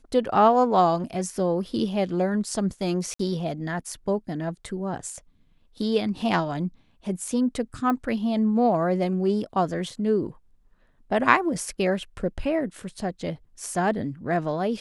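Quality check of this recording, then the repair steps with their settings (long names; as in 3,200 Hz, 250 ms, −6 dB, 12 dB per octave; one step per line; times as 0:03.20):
0:03.14–0:03.19: drop-out 54 ms
0:07.90: click −15 dBFS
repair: click removal
repair the gap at 0:03.14, 54 ms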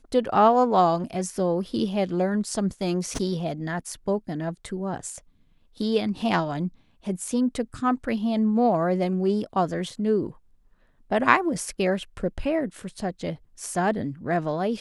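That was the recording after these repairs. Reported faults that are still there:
none of them is left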